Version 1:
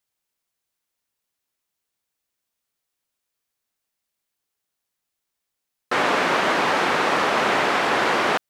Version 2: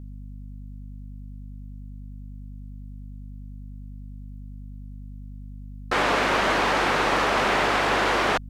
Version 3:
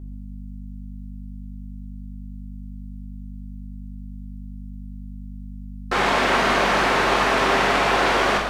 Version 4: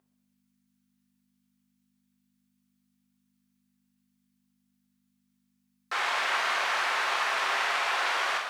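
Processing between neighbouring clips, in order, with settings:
single-diode clipper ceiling -18 dBFS; hum 50 Hz, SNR 11 dB
gated-style reverb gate 420 ms falling, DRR 0 dB
high-pass 990 Hz 12 dB/octave; trim -6 dB

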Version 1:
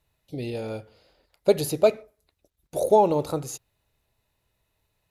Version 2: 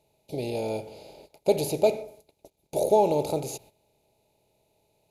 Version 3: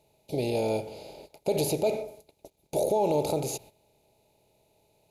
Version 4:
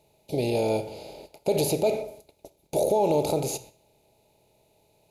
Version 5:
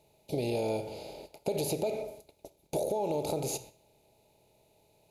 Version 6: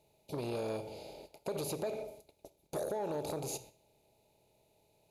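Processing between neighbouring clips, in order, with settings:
spectral levelling over time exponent 0.6; gate -45 dBFS, range -13 dB; high-order bell 1.4 kHz -13 dB 1 oct; trim -4.5 dB
peak limiter -19.5 dBFS, peak gain reduction 10 dB; trim +2.5 dB
reverberation RT60 0.50 s, pre-delay 23 ms, DRR 15.5 dB; trim +2.5 dB
compression 6:1, threshold -26 dBFS, peak gain reduction 7.5 dB; trim -2 dB
transformer saturation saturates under 550 Hz; trim -4.5 dB

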